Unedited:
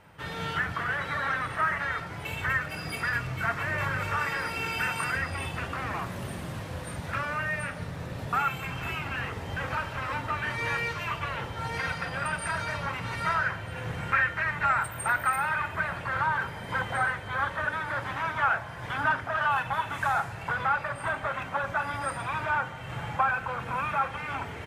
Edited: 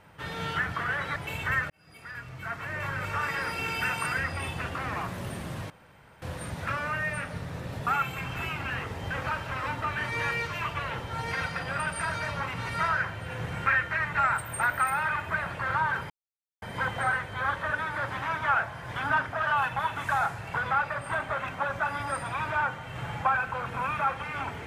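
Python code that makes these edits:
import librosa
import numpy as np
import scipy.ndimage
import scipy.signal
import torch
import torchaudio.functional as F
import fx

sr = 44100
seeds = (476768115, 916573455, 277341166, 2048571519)

y = fx.edit(x, sr, fx.cut(start_s=1.16, length_s=0.98),
    fx.fade_in_span(start_s=2.68, length_s=1.75),
    fx.insert_room_tone(at_s=6.68, length_s=0.52),
    fx.insert_silence(at_s=16.56, length_s=0.52), tone=tone)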